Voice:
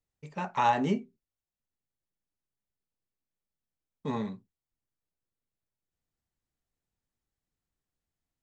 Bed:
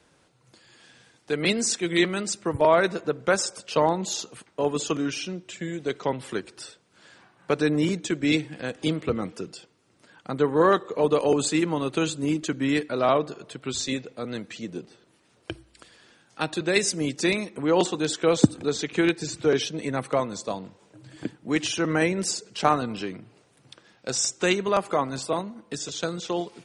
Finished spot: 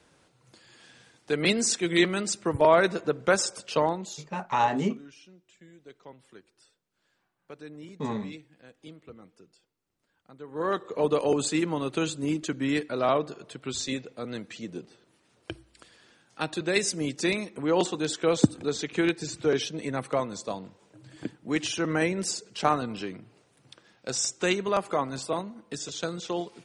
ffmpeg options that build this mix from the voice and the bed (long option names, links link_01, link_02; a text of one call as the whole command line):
ffmpeg -i stem1.wav -i stem2.wav -filter_complex "[0:a]adelay=3950,volume=1dB[link_01];[1:a]volume=17.5dB,afade=type=out:start_time=3.63:duration=0.65:silence=0.0944061,afade=type=in:start_time=10.46:duration=0.5:silence=0.125893[link_02];[link_01][link_02]amix=inputs=2:normalize=0" out.wav